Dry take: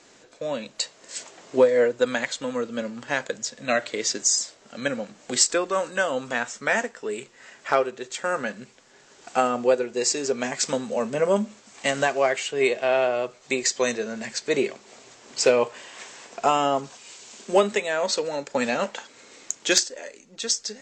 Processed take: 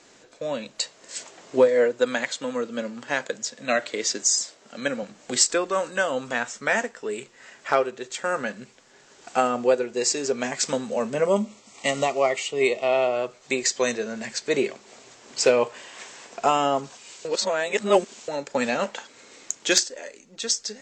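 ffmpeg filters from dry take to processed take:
ffmpeg -i in.wav -filter_complex "[0:a]asettb=1/sr,asplit=3[link_01][link_02][link_03];[link_01]atrim=end=1.674[link_04];[link_02]atrim=start=1.67:end=5.03,asetpts=PTS-STARTPTS,afade=type=in:duration=0.004:curve=qsin,afade=type=out:start_time=3.356:duration=0.004:curve=qsin,highpass=150[link_05];[link_03]atrim=start=5.026[link_06];[link_04][link_05]acrossfade=duration=0.004:curve1=hsin:curve2=qsin[link_07];[link_07][link_06]acrossfade=duration=0.004:curve1=qsin:curve2=hsin,asettb=1/sr,asplit=3[link_08][link_09][link_10];[link_08]atrim=end=11.264[link_11];[link_09]atrim=start=11.26:end=13.16,asetpts=PTS-STARTPTS,afade=type=in:duration=0.004:curve=qsin,afade=type=out:start_time=1.896:duration=0.004:curve=qsin,asuperstop=centerf=1600:order=8:qfactor=3.9[link_12];[link_10]atrim=start=13.156[link_13];[link_11][link_12]acrossfade=duration=0.004:curve1=hsin:curve2=qsin[link_14];[link_14][link_13]acrossfade=duration=0.004:curve1=qsin:curve2=hsin,asplit=3[link_15][link_16][link_17];[link_15]atrim=end=17.252[link_18];[link_16]atrim=start=17.248:end=18.282,asetpts=PTS-STARTPTS,areverse[link_19];[link_17]atrim=start=18.278[link_20];[link_18][link_19]acrossfade=duration=0.004:curve1=hsin:curve2=hsin[link_21];[link_21][link_20]acrossfade=duration=0.004:curve1=hsin:curve2=hsin" out.wav

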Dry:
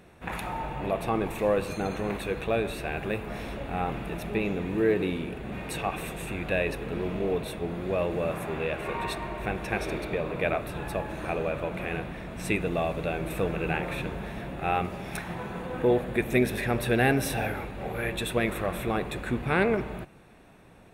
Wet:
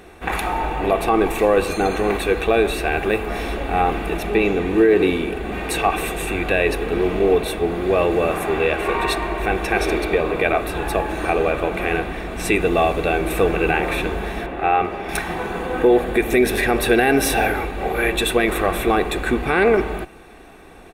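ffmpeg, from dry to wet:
ffmpeg -i in.wav -filter_complex "[0:a]asettb=1/sr,asplit=3[link_01][link_02][link_03];[link_01]atrim=end=4.174[link_04];[link_02]atrim=start=4.17:end=5.06,asetpts=PTS-STARTPTS,afade=type=in:duration=0.004:curve=qsin,afade=type=out:start_time=0.886:duration=0.004:curve=qsin,highshelf=frequency=12000:gain=-5.5[link_05];[link_03]atrim=start=5.056[link_06];[link_04][link_05]acrossfade=duration=0.004:curve1=hsin:curve2=qsin[link_07];[link_07][link_06]acrossfade=duration=0.004:curve1=qsin:curve2=hsin,asettb=1/sr,asplit=3[link_08][link_09][link_10];[link_08]atrim=end=14.464[link_11];[link_09]atrim=start=14.46:end=15.09,asetpts=PTS-STARTPTS,afade=type=in:duration=0.004:curve=qsin,afade=type=out:start_time=0.626:duration=0.004:curve=qsin,bass=frequency=250:gain=-6,treble=frequency=4000:gain=-14[link_12];[link_10]atrim=start=15.086[link_13];[link_11][link_12]acrossfade=duration=0.004:curve1=hsin:curve2=qsin[link_14];[link_14][link_13]acrossfade=duration=0.004:curve1=qsin:curve2=hsin,equalizer=frequency=120:width_type=o:width=0.58:gain=-13.5,aecho=1:1:2.6:0.39,alimiter=level_in=16dB:limit=-1dB:release=50:level=0:latency=1,volume=-5dB" out.wav

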